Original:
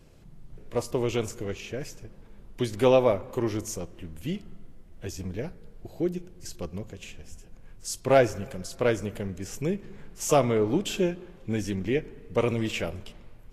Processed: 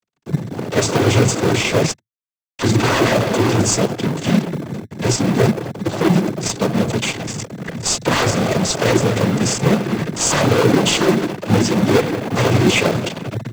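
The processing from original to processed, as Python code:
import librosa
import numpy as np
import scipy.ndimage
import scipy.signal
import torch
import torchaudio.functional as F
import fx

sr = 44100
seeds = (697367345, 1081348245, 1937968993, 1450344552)

p1 = np.minimum(x, 2.0 * 10.0 ** (-22.5 / 20.0) - x)
p2 = fx.highpass(p1, sr, hz=1200.0, slope=24, at=(1.9, 2.62))
p3 = fx.fuzz(p2, sr, gain_db=49.0, gate_db=-45.0)
p4 = fx.noise_vocoder(p3, sr, seeds[0], bands=16)
p5 = fx.sample_hold(p4, sr, seeds[1], rate_hz=1900.0, jitter_pct=0)
p6 = p4 + (p5 * librosa.db_to_amplitude(-8.0))
y = p6 * librosa.db_to_amplitude(-1.0)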